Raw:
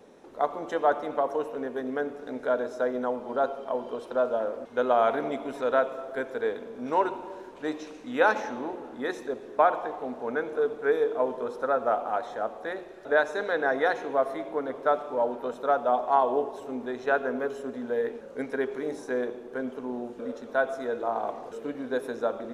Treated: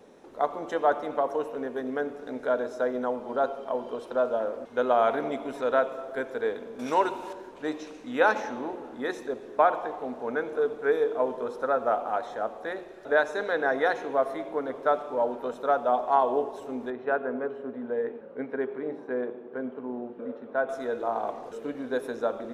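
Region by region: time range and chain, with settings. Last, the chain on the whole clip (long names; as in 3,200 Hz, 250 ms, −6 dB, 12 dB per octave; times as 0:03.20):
0:06.79–0:07.33: high-shelf EQ 3,000 Hz +11 dB + one half of a high-frequency compander encoder only
0:16.90–0:20.69: high-pass filter 110 Hz + high-frequency loss of the air 500 metres
whole clip: no processing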